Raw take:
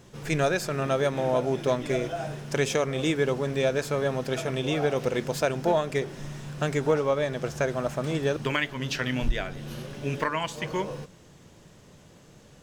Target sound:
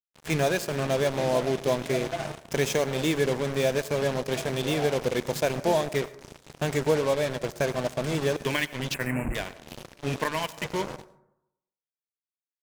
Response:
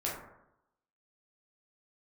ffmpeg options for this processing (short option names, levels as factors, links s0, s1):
-filter_complex "[0:a]highpass=57,equalizer=f=1300:w=7.9:g=-14.5,acrusher=bits=4:mix=0:aa=0.5,asettb=1/sr,asplit=3[s0][s1][s2];[s0]atrim=end=8.944[s3];[s1]atrim=start=8.94:end=9.35,asetpts=PTS-STARTPTS,afade=t=in:d=0.004:c=qsin,afade=t=out:st=0.406:d=0.004:c=qsin,asuperstop=centerf=4500:order=12:qfactor=0.9[s4];[s2]atrim=start=9.346[s5];[s3][s4]acrossfade=d=0.004:c1=hsin:c2=qsin[s6];[s6][s5]acrossfade=d=0.004:c1=qsin:c2=hsin,asplit=2[s7][s8];[1:a]atrim=start_sample=2205,highshelf=f=5100:g=8.5,adelay=88[s9];[s8][s9]afir=irnorm=-1:irlink=0,volume=0.0668[s10];[s7][s10]amix=inputs=2:normalize=0"